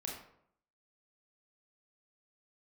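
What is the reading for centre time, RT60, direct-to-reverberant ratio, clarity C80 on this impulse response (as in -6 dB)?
42 ms, 0.70 s, -2.0 dB, 7.0 dB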